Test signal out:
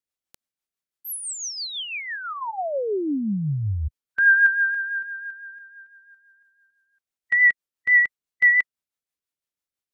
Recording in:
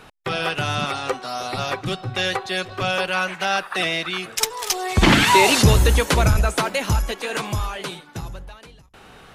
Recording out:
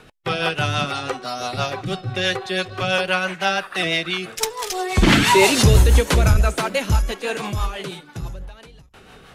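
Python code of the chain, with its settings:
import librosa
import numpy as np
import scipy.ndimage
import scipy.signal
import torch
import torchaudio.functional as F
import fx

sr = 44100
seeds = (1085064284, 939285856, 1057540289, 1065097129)

y = fx.hpss(x, sr, part='harmonic', gain_db=6)
y = fx.rotary(y, sr, hz=6.0)
y = y * 10.0 ** (-1.0 / 20.0)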